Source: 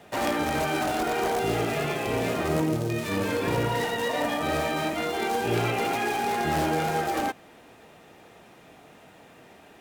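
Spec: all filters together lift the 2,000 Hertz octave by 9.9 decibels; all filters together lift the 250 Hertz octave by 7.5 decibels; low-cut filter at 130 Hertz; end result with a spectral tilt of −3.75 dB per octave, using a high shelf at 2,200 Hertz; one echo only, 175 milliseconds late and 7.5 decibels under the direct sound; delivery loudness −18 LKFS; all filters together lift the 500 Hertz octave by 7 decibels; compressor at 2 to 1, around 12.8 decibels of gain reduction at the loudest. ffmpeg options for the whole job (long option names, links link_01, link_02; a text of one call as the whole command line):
ffmpeg -i in.wav -af "highpass=130,equalizer=frequency=250:width_type=o:gain=8,equalizer=frequency=500:width_type=o:gain=5.5,equalizer=frequency=2000:width_type=o:gain=7.5,highshelf=frequency=2200:gain=8,acompressor=threshold=-40dB:ratio=2,aecho=1:1:175:0.422,volume=13dB" out.wav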